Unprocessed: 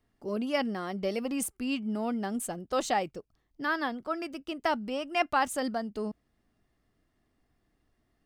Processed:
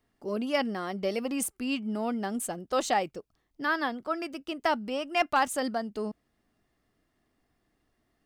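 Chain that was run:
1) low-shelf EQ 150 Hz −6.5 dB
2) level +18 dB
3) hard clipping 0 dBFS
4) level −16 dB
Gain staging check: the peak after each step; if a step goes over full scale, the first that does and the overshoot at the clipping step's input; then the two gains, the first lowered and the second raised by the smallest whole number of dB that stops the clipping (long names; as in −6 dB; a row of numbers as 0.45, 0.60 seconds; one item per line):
−14.5, +3.5, 0.0, −16.0 dBFS
step 2, 3.5 dB
step 2 +14 dB, step 4 −12 dB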